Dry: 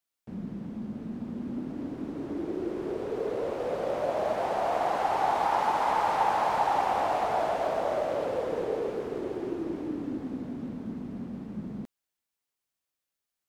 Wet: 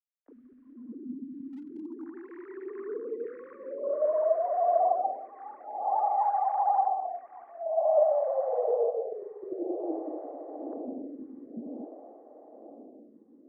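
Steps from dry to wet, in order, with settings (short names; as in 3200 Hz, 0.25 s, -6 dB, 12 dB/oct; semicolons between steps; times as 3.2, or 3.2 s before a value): sine-wave speech; low-pass sweep 520 Hz -> 2000 Hz, 1.5–2.22; bit-crush 12-bit; low-pass sweep 1700 Hz -> 650 Hz, 3.11–4.44; 1.52–2.17 overloaded stage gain 30 dB; diffused feedback echo 0.605 s, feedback 68%, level -10.5 dB; photocell phaser 0.51 Hz; gain -3.5 dB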